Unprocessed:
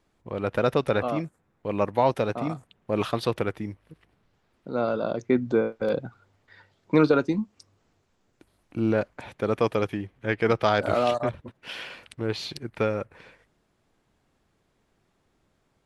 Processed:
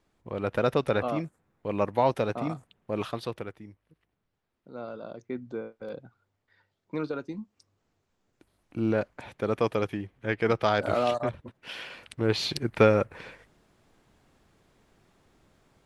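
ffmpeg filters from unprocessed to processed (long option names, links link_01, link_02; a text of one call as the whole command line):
ffmpeg -i in.wav -af "volume=17dB,afade=type=out:start_time=2.52:duration=1.07:silence=0.281838,afade=type=in:start_time=7.2:duration=1.68:silence=0.298538,afade=type=in:start_time=11.9:duration=0.7:silence=0.375837" out.wav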